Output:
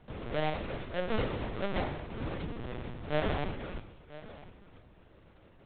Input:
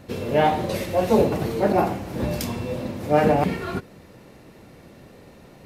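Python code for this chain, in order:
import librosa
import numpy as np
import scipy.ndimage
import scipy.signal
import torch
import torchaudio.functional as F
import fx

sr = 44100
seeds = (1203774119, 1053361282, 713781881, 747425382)

y = fx.halfwave_hold(x, sr)
y = fx.comb_fb(y, sr, f0_hz=60.0, decay_s=1.1, harmonics='all', damping=0.0, mix_pct=70)
y = y + 10.0 ** (-17.0 / 20.0) * np.pad(y, (int(997 * sr / 1000.0), 0))[:len(y)]
y = fx.lpc_vocoder(y, sr, seeds[0], excitation='pitch_kept', order=10)
y = F.gain(torch.from_numpy(y), -8.0).numpy()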